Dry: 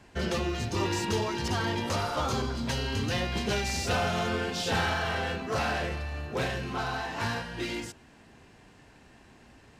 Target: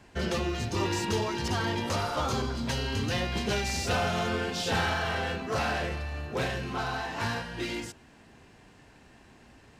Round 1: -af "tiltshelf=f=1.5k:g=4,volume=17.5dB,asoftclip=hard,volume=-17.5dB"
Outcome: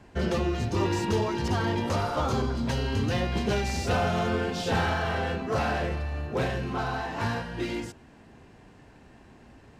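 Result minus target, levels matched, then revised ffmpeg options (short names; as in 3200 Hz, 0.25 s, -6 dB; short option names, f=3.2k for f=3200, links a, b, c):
2000 Hz band -2.5 dB
-af "volume=17.5dB,asoftclip=hard,volume=-17.5dB"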